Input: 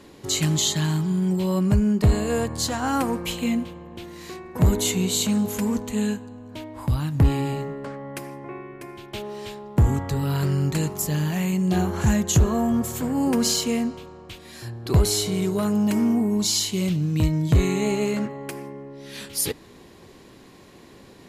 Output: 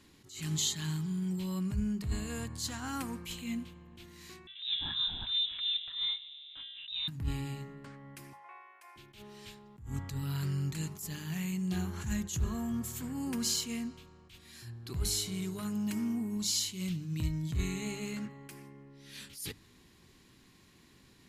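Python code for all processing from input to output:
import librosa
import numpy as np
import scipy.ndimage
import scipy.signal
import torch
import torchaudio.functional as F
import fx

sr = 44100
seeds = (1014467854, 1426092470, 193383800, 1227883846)

y = fx.chain(x, sr, fx.highpass(hz=100.0, slope=12),
    fx.freq_invert(carrier_hz=3800), at=(4.47, 7.08))
y = fx.chain(y, sr, fx.highpass(hz=620.0, slope=24),
    fx.peak_eq(hz=840.0, db=10.0, octaves=0.86), at=(8.33, 8.96))
y = fx.peak_eq(y, sr, hz=560.0, db=-14.5, octaves=1.7)
y = fx.hum_notches(y, sr, base_hz=50, count=4)
y = fx.attack_slew(y, sr, db_per_s=110.0)
y = y * 10.0 ** (-8.0 / 20.0)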